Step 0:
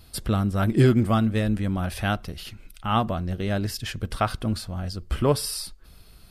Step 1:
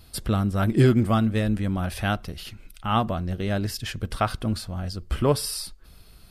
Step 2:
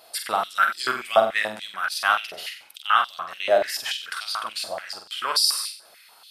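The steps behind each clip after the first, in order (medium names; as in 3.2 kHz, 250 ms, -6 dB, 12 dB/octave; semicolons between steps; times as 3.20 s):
no audible change
on a send: flutter echo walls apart 8 m, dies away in 0.46 s; on the sum: step-sequenced high-pass 6.9 Hz 640–4500 Hz; trim +2.5 dB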